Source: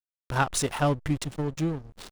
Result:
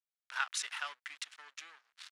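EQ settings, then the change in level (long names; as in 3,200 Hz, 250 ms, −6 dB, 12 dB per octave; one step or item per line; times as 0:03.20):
four-pole ladder band-pass 1,900 Hz, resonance 30%
first difference
+17.0 dB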